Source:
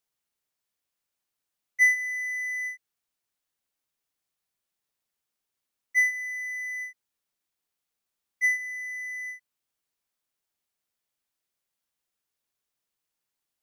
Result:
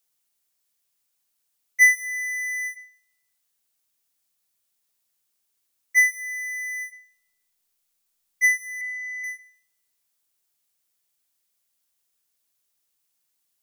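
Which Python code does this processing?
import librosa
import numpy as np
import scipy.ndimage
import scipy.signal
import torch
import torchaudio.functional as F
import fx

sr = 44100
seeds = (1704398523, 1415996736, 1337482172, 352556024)

p1 = fx.steep_lowpass(x, sr, hz=5300.0, slope=36, at=(8.81, 9.24))
p2 = fx.rev_schroeder(p1, sr, rt60_s=0.67, comb_ms=26, drr_db=16.0)
p3 = fx.backlash(p2, sr, play_db=-42.5)
p4 = p2 + (p3 * librosa.db_to_amplitude(-12.0))
p5 = fx.high_shelf(p4, sr, hz=4100.0, db=11.0)
y = p5 * librosa.db_to_amplitude(1.0)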